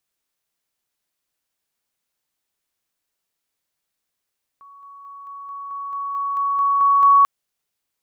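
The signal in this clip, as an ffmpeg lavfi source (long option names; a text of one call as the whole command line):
ffmpeg -f lavfi -i "aevalsrc='pow(10,(-42+3*floor(t/0.22))/20)*sin(2*PI*1120*t)':duration=2.64:sample_rate=44100" out.wav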